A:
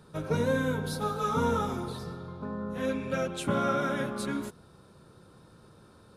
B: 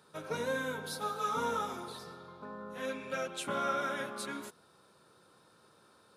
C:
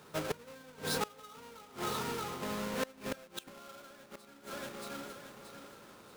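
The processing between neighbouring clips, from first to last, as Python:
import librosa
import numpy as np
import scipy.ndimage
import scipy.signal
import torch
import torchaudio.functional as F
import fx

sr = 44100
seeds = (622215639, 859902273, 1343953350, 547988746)

y1 = fx.highpass(x, sr, hz=750.0, slope=6)
y1 = F.gain(torch.from_numpy(y1), -1.5).numpy()
y2 = fx.halfwave_hold(y1, sr)
y2 = fx.echo_feedback(y2, sr, ms=628, feedback_pct=37, wet_db=-12.5)
y2 = fx.gate_flip(y2, sr, shuts_db=-28.0, range_db=-25)
y2 = F.gain(torch.from_numpy(y2), 2.5).numpy()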